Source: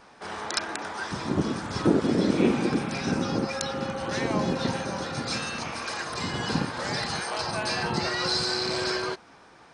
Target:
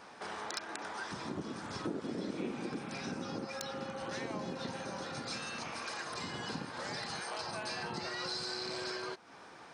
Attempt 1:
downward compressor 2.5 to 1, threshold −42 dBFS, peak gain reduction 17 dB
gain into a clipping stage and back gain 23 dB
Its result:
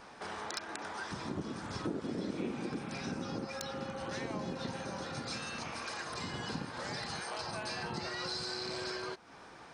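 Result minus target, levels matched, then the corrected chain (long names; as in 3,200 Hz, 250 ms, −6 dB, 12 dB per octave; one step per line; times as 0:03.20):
125 Hz band +2.5 dB
downward compressor 2.5 to 1, threshold −42 dBFS, peak gain reduction 17 dB
high-pass filter 150 Hz 6 dB per octave
gain into a clipping stage and back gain 23 dB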